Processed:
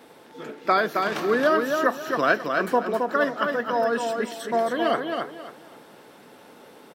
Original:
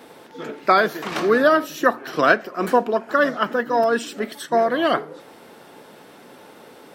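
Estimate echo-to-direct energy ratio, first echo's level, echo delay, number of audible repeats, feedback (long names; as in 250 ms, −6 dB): −4.0 dB, −4.5 dB, 269 ms, 3, 26%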